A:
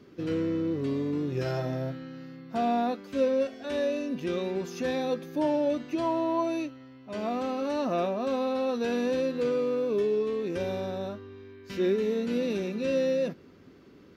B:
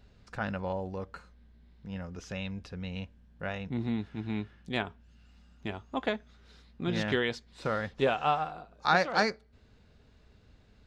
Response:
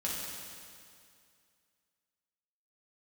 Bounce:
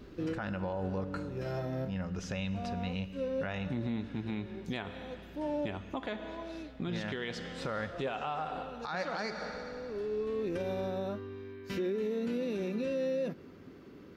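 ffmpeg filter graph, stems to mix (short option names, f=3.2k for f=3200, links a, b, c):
-filter_complex "[0:a]equalizer=f=5.3k:t=o:w=1.8:g=-4,volume=2dB[a];[1:a]volume=2dB,asplit=3[b][c][d];[c]volume=-15dB[e];[d]apad=whole_len=624621[f];[a][f]sidechaincompress=threshold=-49dB:ratio=6:attack=22:release=739[g];[2:a]atrim=start_sample=2205[h];[e][h]afir=irnorm=-1:irlink=0[i];[g][b][i]amix=inputs=3:normalize=0,alimiter=level_in=2.5dB:limit=-24dB:level=0:latency=1:release=149,volume=-2.5dB"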